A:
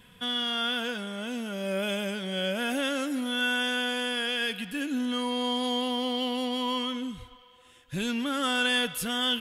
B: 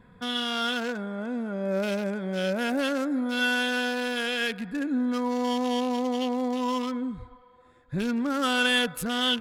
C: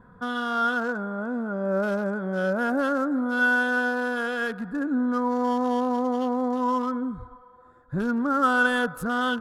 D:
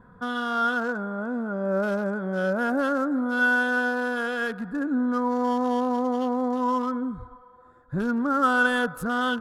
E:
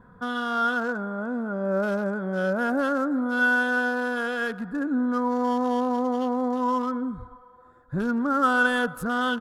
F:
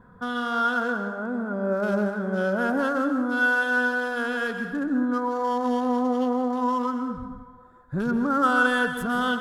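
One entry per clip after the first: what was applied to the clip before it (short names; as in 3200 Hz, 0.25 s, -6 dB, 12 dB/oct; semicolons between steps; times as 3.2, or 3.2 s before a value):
Wiener smoothing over 15 samples; gain +3.5 dB
resonant high shelf 1800 Hz -9 dB, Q 3; gain +1.5 dB
nothing audible
outdoor echo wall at 21 m, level -28 dB
plate-style reverb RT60 0.92 s, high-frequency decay 0.85×, pre-delay 0.115 s, DRR 6.5 dB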